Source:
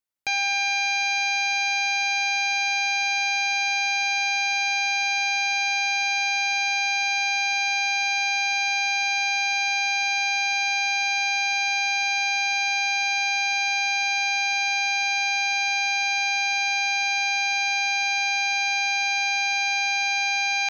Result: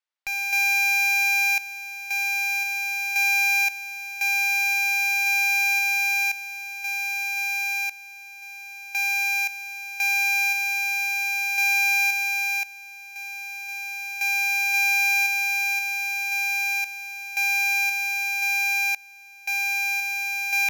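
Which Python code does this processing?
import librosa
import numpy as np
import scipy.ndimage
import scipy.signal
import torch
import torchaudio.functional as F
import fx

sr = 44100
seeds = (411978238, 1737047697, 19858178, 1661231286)

y = fx.bandpass_edges(x, sr, low_hz=690.0, high_hz=4500.0)
y = fx.cheby_harmonics(y, sr, harmonics=(5,), levels_db=(-8,), full_scale_db=-15.5)
y = fx.tremolo_random(y, sr, seeds[0], hz=1.9, depth_pct=95)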